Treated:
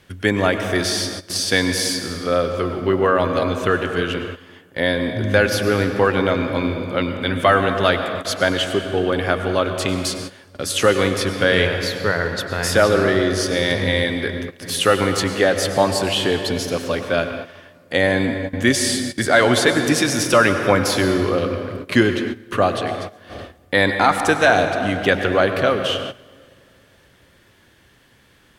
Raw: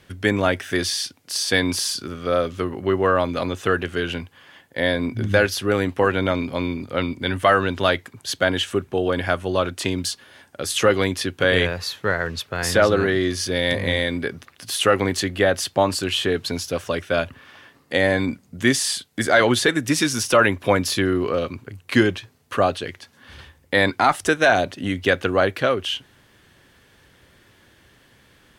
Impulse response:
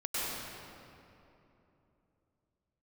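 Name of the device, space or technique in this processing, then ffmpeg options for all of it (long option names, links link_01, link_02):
keyed gated reverb: -filter_complex "[0:a]asplit=3[link_01][link_02][link_03];[1:a]atrim=start_sample=2205[link_04];[link_02][link_04]afir=irnorm=-1:irlink=0[link_05];[link_03]apad=whole_len=1260576[link_06];[link_05][link_06]sidechaingate=range=-16dB:threshold=-43dB:ratio=16:detection=peak,volume=-11dB[link_07];[link_01][link_07]amix=inputs=2:normalize=0"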